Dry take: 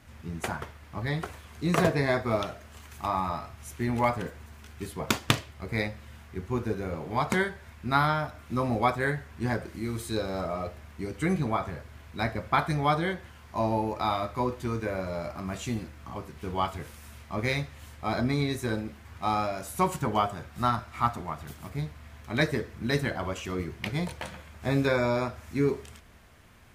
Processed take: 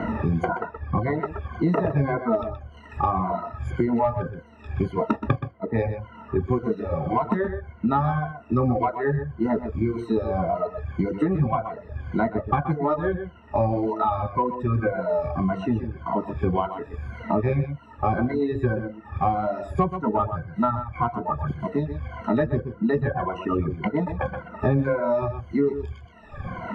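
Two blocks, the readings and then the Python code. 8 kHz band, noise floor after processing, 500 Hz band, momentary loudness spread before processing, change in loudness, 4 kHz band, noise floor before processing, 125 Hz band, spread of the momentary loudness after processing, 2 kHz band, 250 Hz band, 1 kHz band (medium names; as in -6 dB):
under -20 dB, -47 dBFS, +6.0 dB, 14 LU, +4.5 dB, under -10 dB, -50 dBFS, +5.5 dB, 8 LU, -2.5 dB, +6.5 dB, +4.0 dB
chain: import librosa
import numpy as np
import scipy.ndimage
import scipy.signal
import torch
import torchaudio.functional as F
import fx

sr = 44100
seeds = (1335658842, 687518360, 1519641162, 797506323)

p1 = fx.spec_ripple(x, sr, per_octave=1.9, drift_hz=-1.8, depth_db=22)
p2 = scipy.signal.sosfilt(scipy.signal.butter(2, 1000.0, 'lowpass', fs=sr, output='sos'), p1)
p3 = fx.dereverb_blind(p2, sr, rt60_s=1.5)
p4 = 10.0 ** (-15.0 / 20.0) * np.tanh(p3 / 10.0 ** (-15.0 / 20.0))
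p5 = p3 + (p4 * 10.0 ** (-9.5 / 20.0))
p6 = p5 + 10.0 ** (-11.5 / 20.0) * np.pad(p5, (int(124 * sr / 1000.0), 0))[:len(p5)]
y = fx.band_squash(p6, sr, depth_pct=100)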